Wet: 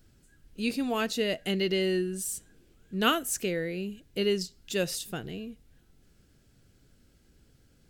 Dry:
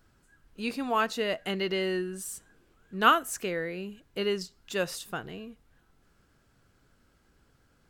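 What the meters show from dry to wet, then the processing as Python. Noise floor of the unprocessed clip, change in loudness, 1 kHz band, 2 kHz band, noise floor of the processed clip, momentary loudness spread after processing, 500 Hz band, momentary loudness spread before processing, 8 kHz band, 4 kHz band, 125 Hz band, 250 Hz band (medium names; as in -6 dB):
-67 dBFS, -0.5 dB, -7.0 dB, -2.5 dB, -64 dBFS, 11 LU, +1.5 dB, 16 LU, +4.5 dB, +2.5 dB, +4.5 dB, +3.5 dB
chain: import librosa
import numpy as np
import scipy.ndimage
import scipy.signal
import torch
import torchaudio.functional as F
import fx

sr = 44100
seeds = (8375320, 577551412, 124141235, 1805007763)

y = fx.peak_eq(x, sr, hz=1100.0, db=-14.0, octaves=1.5)
y = F.gain(torch.from_numpy(y), 5.0).numpy()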